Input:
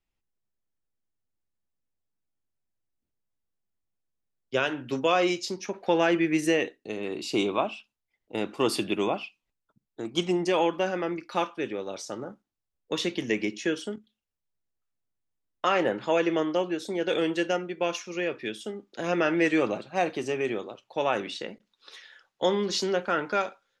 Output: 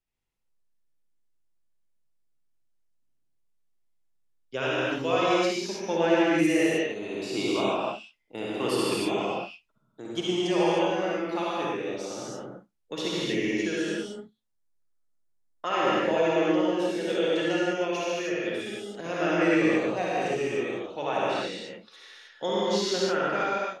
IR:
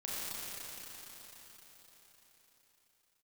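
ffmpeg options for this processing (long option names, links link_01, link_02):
-filter_complex "[0:a]asettb=1/sr,asplit=3[link_01][link_02][link_03];[link_01]atrim=end=13.904[link_04];[link_02]atrim=start=13.9:end=15.65,asetpts=PTS-STARTPTS,afade=type=in:duration=0.004:curve=qsin,afade=type=out:start_time=1.746:duration=0.004:curve=qsin,equalizer=frequency=2800:width_type=o:width=0.66:gain=-10[link_05];[link_03]atrim=start=15.646[link_06];[link_04][link_05]acrossfade=duration=0.004:curve1=hsin:curve2=qsin[link_07];[link_07][link_06]acrossfade=duration=0.004:curve1=qsin:curve2=hsin[link_08];[1:a]atrim=start_sample=2205,afade=type=out:start_time=0.24:duration=0.01,atrim=end_sample=11025,asetrate=26460,aresample=44100[link_09];[link_08][link_09]afir=irnorm=-1:irlink=0,volume=-3.5dB"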